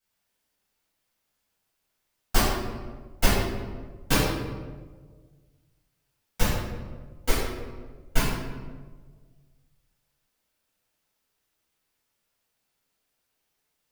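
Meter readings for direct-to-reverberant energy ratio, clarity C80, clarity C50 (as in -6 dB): -12.5 dB, 2.0 dB, -0.5 dB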